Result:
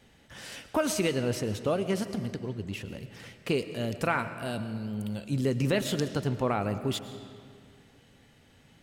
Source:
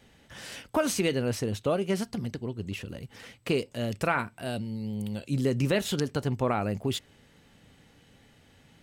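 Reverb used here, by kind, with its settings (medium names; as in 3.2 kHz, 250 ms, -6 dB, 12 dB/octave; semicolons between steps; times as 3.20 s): algorithmic reverb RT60 2.2 s, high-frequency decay 0.7×, pre-delay 70 ms, DRR 11 dB; trim -1 dB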